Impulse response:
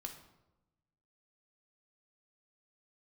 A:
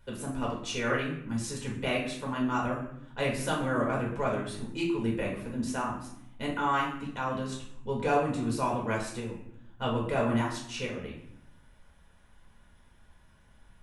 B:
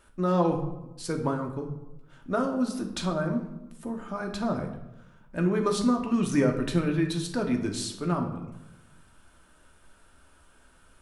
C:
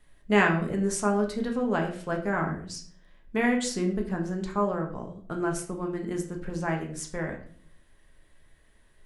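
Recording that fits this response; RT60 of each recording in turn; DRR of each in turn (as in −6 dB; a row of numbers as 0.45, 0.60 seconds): B; 0.70, 0.95, 0.50 seconds; −3.5, 2.5, 1.0 decibels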